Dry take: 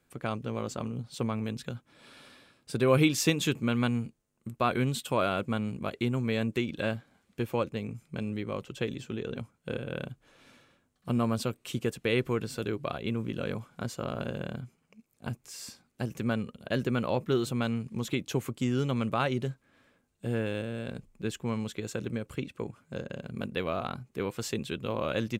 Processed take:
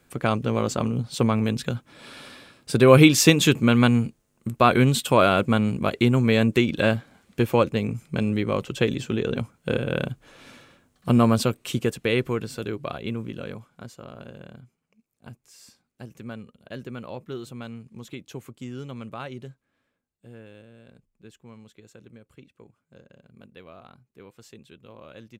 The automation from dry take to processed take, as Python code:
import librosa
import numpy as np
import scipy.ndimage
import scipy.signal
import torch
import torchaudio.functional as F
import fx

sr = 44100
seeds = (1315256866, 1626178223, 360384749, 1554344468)

y = fx.gain(x, sr, db=fx.line((11.27, 10.0), (12.54, 2.0), (13.1, 2.0), (14.02, -7.5), (19.44, -7.5), (20.32, -14.5)))